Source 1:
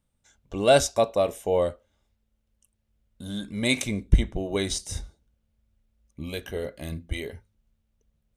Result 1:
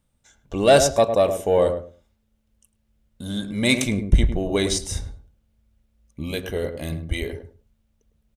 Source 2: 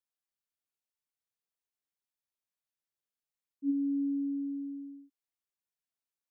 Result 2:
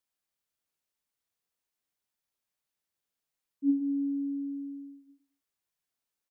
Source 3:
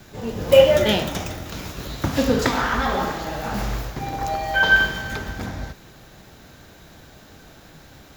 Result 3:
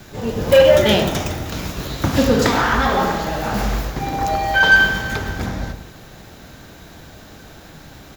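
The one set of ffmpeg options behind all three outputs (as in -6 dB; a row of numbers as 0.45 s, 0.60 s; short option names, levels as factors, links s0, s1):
-filter_complex "[0:a]asoftclip=type=tanh:threshold=0.316,asplit=2[s0][s1];[s1]adelay=105,lowpass=f=810:p=1,volume=0.501,asplit=2[s2][s3];[s3]adelay=105,lowpass=f=810:p=1,volume=0.22,asplit=2[s4][s5];[s5]adelay=105,lowpass=f=810:p=1,volume=0.22[s6];[s2][s4][s6]amix=inputs=3:normalize=0[s7];[s0][s7]amix=inputs=2:normalize=0,volume=1.78"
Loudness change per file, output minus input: +4.5 LU, +2.0 LU, +4.0 LU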